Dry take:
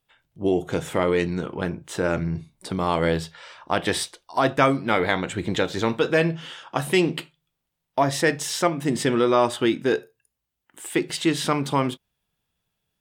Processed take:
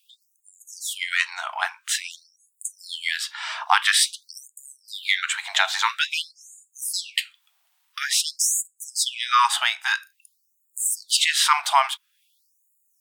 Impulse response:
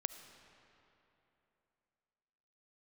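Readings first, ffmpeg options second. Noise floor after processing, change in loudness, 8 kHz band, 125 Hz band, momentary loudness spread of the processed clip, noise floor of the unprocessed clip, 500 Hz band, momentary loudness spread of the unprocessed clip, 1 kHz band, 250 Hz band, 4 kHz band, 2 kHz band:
−70 dBFS, +1.0 dB, +10.0 dB, below −40 dB, 17 LU, −81 dBFS, −21.0 dB, 10 LU, +2.0 dB, below −40 dB, +8.0 dB, +4.0 dB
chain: -filter_complex "[0:a]asubboost=boost=11.5:cutoff=120,asplit=2[link_01][link_02];[link_02]acompressor=threshold=-35dB:ratio=10,volume=2dB[link_03];[link_01][link_03]amix=inputs=2:normalize=0,afftfilt=real='re*gte(b*sr/1024,620*pow(6800/620,0.5+0.5*sin(2*PI*0.49*pts/sr)))':imag='im*gte(b*sr/1024,620*pow(6800/620,0.5+0.5*sin(2*PI*0.49*pts/sr)))':win_size=1024:overlap=0.75,volume=8dB"

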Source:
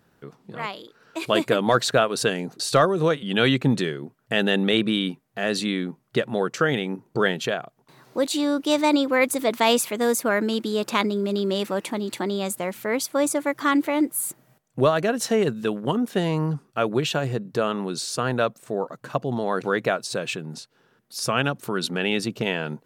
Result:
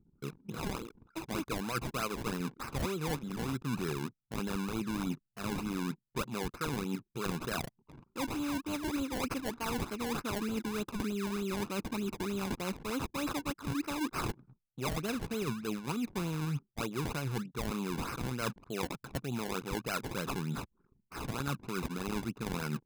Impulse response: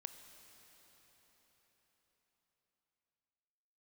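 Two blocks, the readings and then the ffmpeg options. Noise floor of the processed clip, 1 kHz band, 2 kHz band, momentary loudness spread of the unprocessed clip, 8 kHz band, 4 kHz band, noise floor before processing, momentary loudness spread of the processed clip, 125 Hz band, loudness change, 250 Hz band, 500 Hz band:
−79 dBFS, −12.5 dB, −14.0 dB, 10 LU, −12.5 dB, −15.0 dB, −64 dBFS, 5 LU, −8.0 dB, −13.0 dB, −10.5 dB, −16.5 dB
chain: -af "acrusher=samples=24:mix=1:aa=0.000001:lfo=1:lforange=24:lforate=3.3,aecho=1:1:0.8:0.57,areverse,acompressor=threshold=-32dB:ratio=10,areverse,anlmdn=0.001"

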